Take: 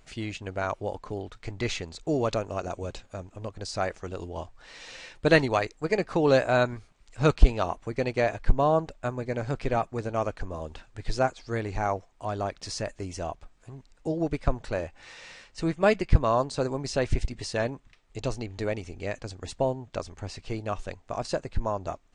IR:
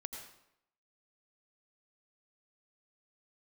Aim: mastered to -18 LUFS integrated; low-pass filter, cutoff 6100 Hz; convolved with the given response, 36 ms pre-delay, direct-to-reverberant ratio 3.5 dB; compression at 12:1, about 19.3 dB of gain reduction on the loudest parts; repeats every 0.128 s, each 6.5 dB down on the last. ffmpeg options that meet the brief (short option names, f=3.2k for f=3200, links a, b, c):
-filter_complex "[0:a]lowpass=6.1k,acompressor=threshold=-27dB:ratio=12,aecho=1:1:128|256|384|512|640|768:0.473|0.222|0.105|0.0491|0.0231|0.0109,asplit=2[a][b];[1:a]atrim=start_sample=2205,adelay=36[c];[b][c]afir=irnorm=-1:irlink=0,volume=-1.5dB[d];[a][d]amix=inputs=2:normalize=0,volume=15dB"